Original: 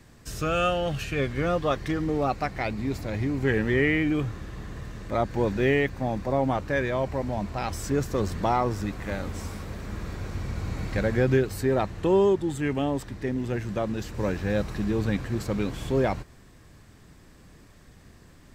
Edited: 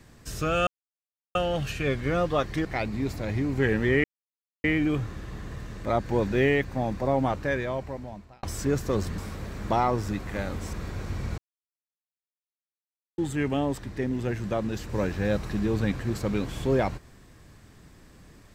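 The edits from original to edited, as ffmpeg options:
ffmpeg -i in.wav -filter_complex "[0:a]asplit=10[link_01][link_02][link_03][link_04][link_05][link_06][link_07][link_08][link_09][link_10];[link_01]atrim=end=0.67,asetpts=PTS-STARTPTS,afade=type=out:start_time=0.666:duration=0.004:curve=hsin,apad=pad_dur=0.68[link_11];[link_02]atrim=start=0.67:end=1.972,asetpts=PTS-STARTPTS,afade=type=in:duration=0.004:curve=hsin[link_12];[link_03]atrim=start=2.498:end=3.89,asetpts=PTS-STARTPTS,afade=type=out:start_time=1.388:duration=0.004:curve=hsin,apad=pad_dur=0.6[link_13];[link_04]atrim=start=3.89:end=7.68,asetpts=PTS-STARTPTS,afade=type=in:duration=0.004:curve=hsin,afade=type=out:start_time=2.71:duration=1.08[link_14];[link_05]atrim=start=7.68:end=8.432,asetpts=PTS-STARTPTS,afade=type=in:duration=0.004:curve=hsin[link_15];[link_06]atrim=start=9.458:end=9.982[link_16];[link_07]atrim=start=8.428:end=9.462[link_17];[link_08]atrim=start=9.978:end=10.63,asetpts=PTS-STARTPTS,afade=type=out:start_time=0.648:duration=0.004:curve=hsin[link_18];[link_09]atrim=start=10.63:end=12.43,asetpts=PTS-STARTPTS,volume=0[link_19];[link_10]atrim=start=12.43,asetpts=PTS-STARTPTS,afade=type=in:duration=0.004:curve=hsin[link_20];[link_11][link_12]concat=n=2:v=0:a=1[link_21];[link_13][link_14][link_15]concat=n=3:v=0:a=1[link_22];[link_21][link_22]acrossfade=duration=0.004:curve1=hsin:curve2=hsin[link_23];[link_23][link_16]acrossfade=duration=0.004:curve1=hsin:curve2=hsin[link_24];[link_24][link_17]acrossfade=duration=0.004:curve1=hsin:curve2=hsin[link_25];[link_18][link_19][link_20]concat=n=3:v=0:a=1[link_26];[link_25][link_26]acrossfade=duration=0.004:curve1=hsin:curve2=hsin" out.wav

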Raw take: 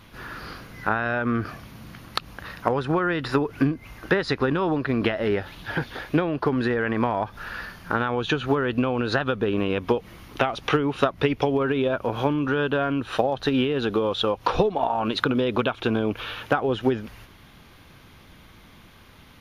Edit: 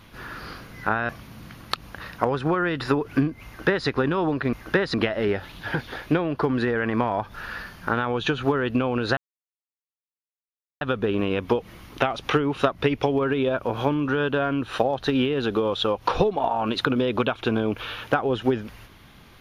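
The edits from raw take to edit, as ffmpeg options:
ffmpeg -i in.wav -filter_complex "[0:a]asplit=5[link_01][link_02][link_03][link_04][link_05];[link_01]atrim=end=1.092[link_06];[link_02]atrim=start=1.528:end=4.972[link_07];[link_03]atrim=start=3.898:end=4.312[link_08];[link_04]atrim=start=4.968:end=9.2,asetpts=PTS-STARTPTS,afade=type=out:start_time=4.228:duration=0.004:curve=hsin,apad=pad_dur=1.64[link_09];[link_05]atrim=start=9.2,asetpts=PTS-STARTPTS,afade=type=in:duration=0.004:curve=hsin[link_10];[link_06][link_07]acrossfade=duration=0.004:curve1=hsin:curve2=hsin[link_11];[link_11][link_08]acrossfade=duration=0.004:curve1=hsin:curve2=hsin[link_12];[link_09][link_10]concat=n=2:v=0:a=1[link_13];[link_12][link_13]acrossfade=duration=0.004:curve1=hsin:curve2=hsin" out.wav

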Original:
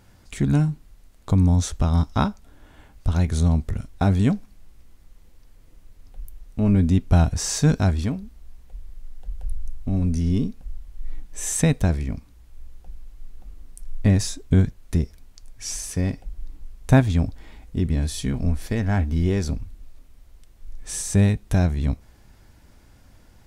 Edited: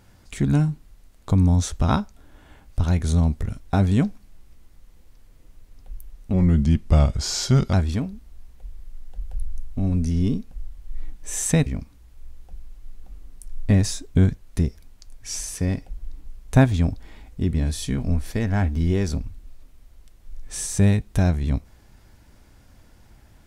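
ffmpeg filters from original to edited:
ffmpeg -i in.wav -filter_complex "[0:a]asplit=5[link_01][link_02][link_03][link_04][link_05];[link_01]atrim=end=1.882[link_06];[link_02]atrim=start=2.158:end=6.614[link_07];[link_03]atrim=start=6.61:end=7.83,asetpts=PTS-STARTPTS,asetrate=38367,aresample=44100,atrim=end_sample=61841,asetpts=PTS-STARTPTS[link_08];[link_04]atrim=start=7.826:end=11.762[link_09];[link_05]atrim=start=12.018[link_10];[link_06][link_07]acrossfade=duration=0.004:curve1=hsin:curve2=hsin[link_11];[link_11][link_08]acrossfade=duration=0.004:curve1=hsin:curve2=hsin[link_12];[link_12][link_09]acrossfade=duration=0.004:curve1=hsin:curve2=hsin[link_13];[link_13][link_10]acrossfade=duration=0.004:curve1=hsin:curve2=hsin" out.wav

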